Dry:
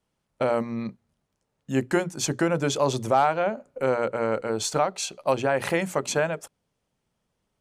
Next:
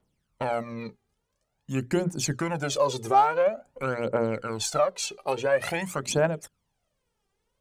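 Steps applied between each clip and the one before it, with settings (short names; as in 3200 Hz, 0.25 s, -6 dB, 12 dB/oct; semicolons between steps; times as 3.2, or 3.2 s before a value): phaser 0.48 Hz, delay 2.6 ms, feedback 70%; in parallel at -2.5 dB: compressor, threshold -24 dBFS, peak gain reduction 14.5 dB; on the sum: gain -7.5 dB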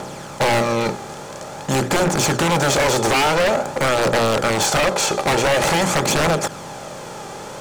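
per-bin compression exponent 0.4; wavefolder -17.5 dBFS; gain +6 dB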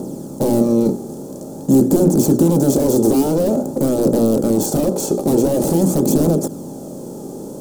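EQ curve 120 Hz 0 dB, 270 Hz +14 dB, 2100 Hz -28 dB, 4500 Hz -11 dB, 14000 Hz +8 dB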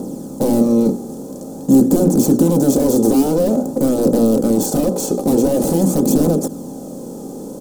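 comb 4 ms, depth 34%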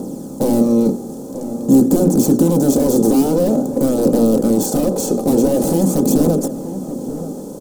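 outdoor echo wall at 160 m, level -12 dB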